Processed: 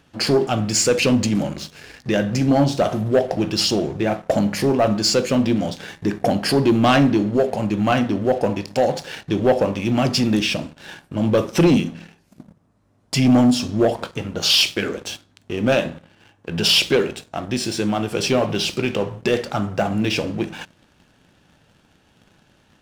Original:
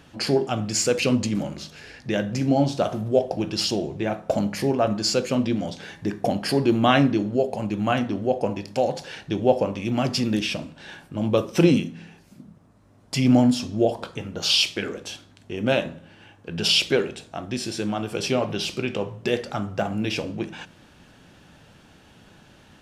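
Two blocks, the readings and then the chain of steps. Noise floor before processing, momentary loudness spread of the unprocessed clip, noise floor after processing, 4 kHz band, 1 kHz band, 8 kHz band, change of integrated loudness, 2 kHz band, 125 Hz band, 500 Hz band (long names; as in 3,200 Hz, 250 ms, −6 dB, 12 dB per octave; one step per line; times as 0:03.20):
−53 dBFS, 14 LU, −59 dBFS, +4.5 dB, +4.0 dB, +5.0 dB, +4.0 dB, +4.5 dB, +4.0 dB, +4.0 dB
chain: leveller curve on the samples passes 2
level −2 dB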